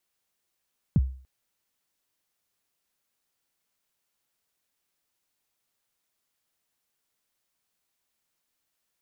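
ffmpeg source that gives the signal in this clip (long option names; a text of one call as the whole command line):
ffmpeg -f lavfi -i "aevalsrc='0.2*pow(10,-3*t/0.44)*sin(2*PI*(210*0.035/log(65/210)*(exp(log(65/210)*min(t,0.035)/0.035)-1)+65*max(t-0.035,0)))':duration=0.29:sample_rate=44100" out.wav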